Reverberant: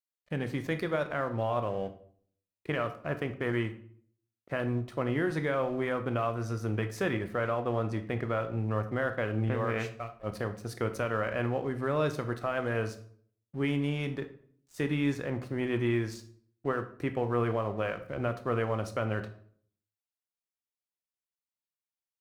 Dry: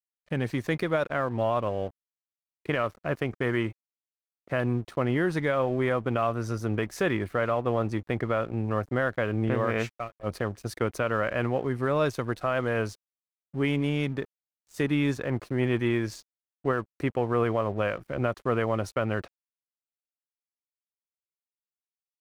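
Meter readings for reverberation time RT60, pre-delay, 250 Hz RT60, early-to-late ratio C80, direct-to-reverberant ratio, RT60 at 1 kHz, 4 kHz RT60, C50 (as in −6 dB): 0.55 s, 15 ms, 0.75 s, 16.5 dB, 8.0 dB, 0.55 s, 0.40 s, 12.5 dB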